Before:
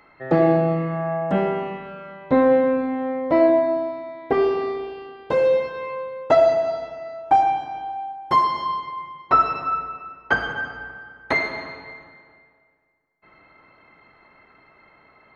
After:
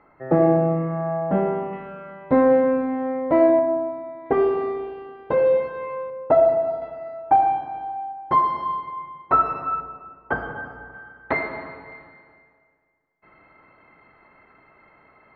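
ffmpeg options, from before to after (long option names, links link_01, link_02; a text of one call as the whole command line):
ffmpeg -i in.wav -af "asetnsamples=nb_out_samples=441:pad=0,asendcmd='1.73 lowpass f 2000;3.59 lowpass f 1300;4.26 lowpass f 1800;6.1 lowpass f 1100;6.82 lowpass f 1600;9.8 lowpass f 1100;10.94 lowpass f 1800;11.92 lowpass f 2500',lowpass=1300" out.wav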